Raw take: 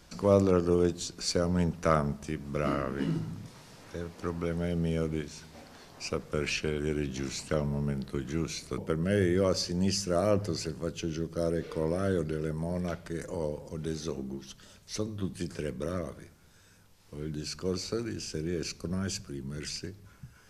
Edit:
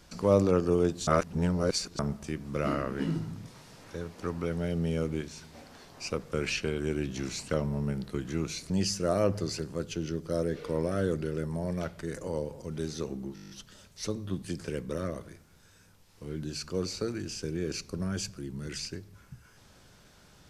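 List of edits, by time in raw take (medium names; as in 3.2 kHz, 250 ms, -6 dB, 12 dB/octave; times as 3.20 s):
1.07–1.99 s: reverse
8.70–9.77 s: delete
14.41 s: stutter 0.02 s, 9 plays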